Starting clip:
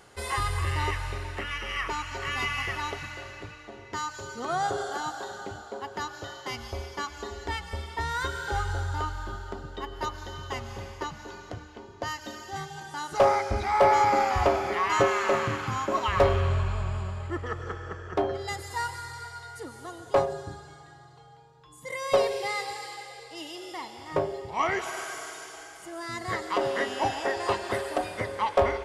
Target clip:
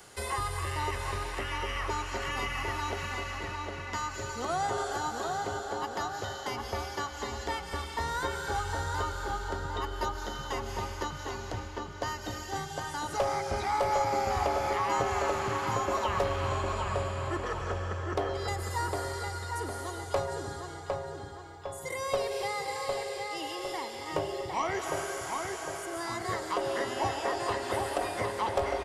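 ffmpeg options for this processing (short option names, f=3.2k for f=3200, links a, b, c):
-filter_complex "[0:a]acrossover=split=120|340|1200|3000[a][b][c][d][e];[a]acompressor=threshold=-38dB:ratio=4[f];[b]acompressor=threshold=-45dB:ratio=4[g];[c]acompressor=threshold=-30dB:ratio=4[h];[d]acompressor=threshold=-45dB:ratio=4[i];[e]acompressor=threshold=-50dB:ratio=4[j];[f][g][h][i][j]amix=inputs=5:normalize=0,highshelf=f=4.5k:g=9.5,asplit=2[k][l];[l]adelay=756,lowpass=f=2.9k:p=1,volume=-3.5dB,asplit=2[m][n];[n]adelay=756,lowpass=f=2.9k:p=1,volume=0.51,asplit=2[o][p];[p]adelay=756,lowpass=f=2.9k:p=1,volume=0.51,asplit=2[q][r];[r]adelay=756,lowpass=f=2.9k:p=1,volume=0.51,asplit=2[s][t];[t]adelay=756,lowpass=f=2.9k:p=1,volume=0.51,asplit=2[u][v];[v]adelay=756,lowpass=f=2.9k:p=1,volume=0.51,asplit=2[w][x];[x]adelay=756,lowpass=f=2.9k:p=1,volume=0.51[y];[k][m][o][q][s][u][w][y]amix=inputs=8:normalize=0"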